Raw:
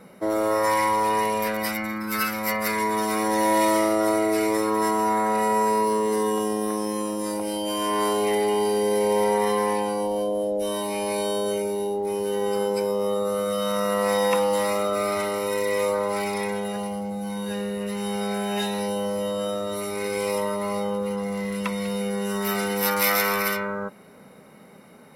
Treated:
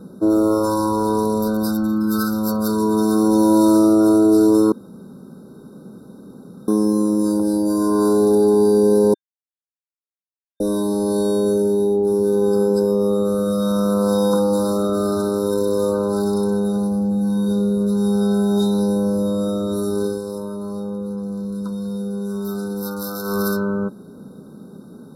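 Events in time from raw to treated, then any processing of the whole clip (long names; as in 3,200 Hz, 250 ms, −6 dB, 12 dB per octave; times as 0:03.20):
0:04.72–0:06.68: fill with room tone
0:09.14–0:10.60: silence
0:20.02–0:23.41: duck −8.5 dB, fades 0.19 s
whole clip: brick-wall band-stop 1,600–3,600 Hz; low shelf with overshoot 470 Hz +10.5 dB, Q 1.5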